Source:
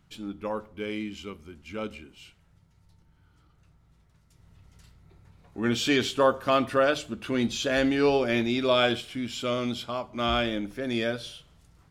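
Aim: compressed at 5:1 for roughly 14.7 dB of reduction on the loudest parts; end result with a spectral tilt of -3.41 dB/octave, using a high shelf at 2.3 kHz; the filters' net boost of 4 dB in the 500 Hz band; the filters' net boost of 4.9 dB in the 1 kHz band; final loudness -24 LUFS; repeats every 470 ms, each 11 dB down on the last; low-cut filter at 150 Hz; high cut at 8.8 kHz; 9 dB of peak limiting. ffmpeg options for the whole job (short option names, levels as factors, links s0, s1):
-af "highpass=150,lowpass=8800,equalizer=f=500:t=o:g=3.5,equalizer=f=1000:t=o:g=4.5,highshelf=f=2300:g=4,acompressor=threshold=0.0355:ratio=5,alimiter=level_in=1.06:limit=0.0631:level=0:latency=1,volume=0.944,aecho=1:1:470|940|1410:0.282|0.0789|0.0221,volume=3.55"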